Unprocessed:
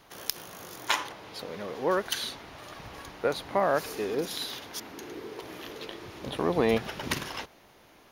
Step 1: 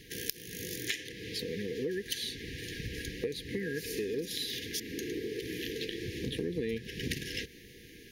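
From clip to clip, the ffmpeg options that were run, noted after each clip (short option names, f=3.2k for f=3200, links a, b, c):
-af "afftfilt=real='re*(1-between(b*sr/4096,510,1600))':imag='im*(1-between(b*sr/4096,510,1600))':win_size=4096:overlap=0.75,equalizer=f=62:w=0.39:g=4,acompressor=threshold=-39dB:ratio=5,volume=6dB"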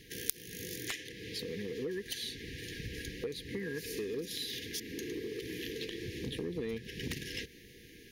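-af "aeval=exprs='0.282*(cos(1*acos(clip(val(0)/0.282,-1,1)))-cos(1*PI/2))+0.126*(cos(3*acos(clip(val(0)/0.282,-1,1)))-cos(3*PI/2))':c=same,volume=7dB"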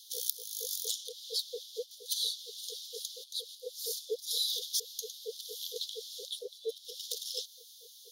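-af "asoftclip=type=tanh:threshold=-16.5dB,asuperstop=centerf=1400:order=20:qfactor=0.5,afftfilt=real='re*gte(b*sr/1024,410*pow(1900/410,0.5+0.5*sin(2*PI*4.3*pts/sr)))':imag='im*gte(b*sr/1024,410*pow(1900/410,0.5+0.5*sin(2*PI*4.3*pts/sr)))':win_size=1024:overlap=0.75,volume=8.5dB"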